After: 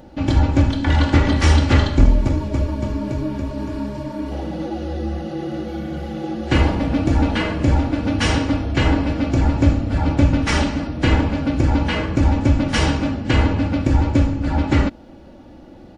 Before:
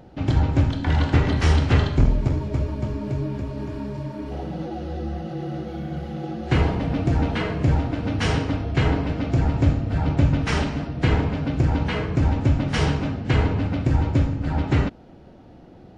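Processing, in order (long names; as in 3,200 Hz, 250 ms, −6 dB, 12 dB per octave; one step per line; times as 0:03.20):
high-shelf EQ 6,300 Hz +6 dB
comb filter 3.5 ms, depth 51%
level +3.5 dB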